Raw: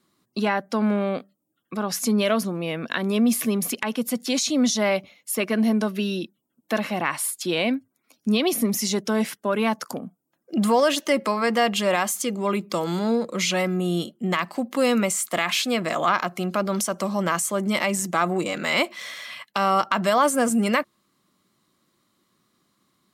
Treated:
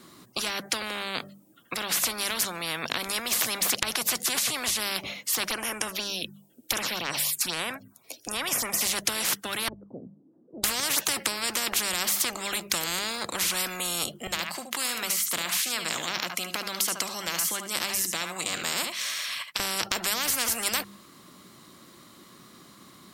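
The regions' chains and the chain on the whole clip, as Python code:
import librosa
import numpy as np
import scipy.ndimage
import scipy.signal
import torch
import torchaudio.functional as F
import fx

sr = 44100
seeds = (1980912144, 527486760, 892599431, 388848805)

y = fx.chain(x, sr, fx.notch(hz=2100.0, q=18.0),
    fx.env_phaser(low_hz=150.0, high_hz=4200.0, full_db=-19.5), at=(5.48, 8.81))
y = fx.chain(y, sr, fx.crossing_spikes(level_db=-23.5),
    fx.ladder_lowpass(hz=380.0, resonance_pct=35),
    fx.upward_expand(threshold_db=-44.0, expansion=1.5), at=(9.68, 10.64))
y = fx.chain(y, sr, fx.tone_stack(knobs='5-5-5'),
    fx.echo_single(ms=73, db=-13.0), at=(14.27, 19.6))
y = fx.hum_notches(y, sr, base_hz=50, count=4)
y = fx.spectral_comp(y, sr, ratio=10.0)
y = F.gain(torch.from_numpy(y), 6.5).numpy()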